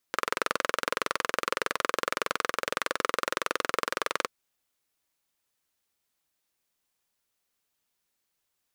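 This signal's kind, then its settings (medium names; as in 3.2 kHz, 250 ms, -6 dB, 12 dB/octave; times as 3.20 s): single-cylinder engine model, steady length 4.15 s, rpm 2600, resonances 510/1200 Hz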